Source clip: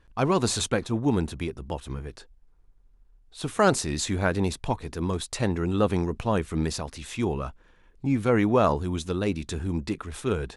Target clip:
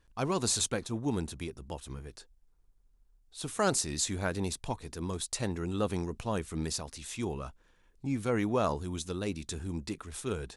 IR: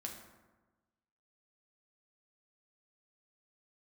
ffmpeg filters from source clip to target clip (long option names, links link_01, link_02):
-af "bass=frequency=250:gain=0,treble=frequency=4000:gain=9,volume=-8dB"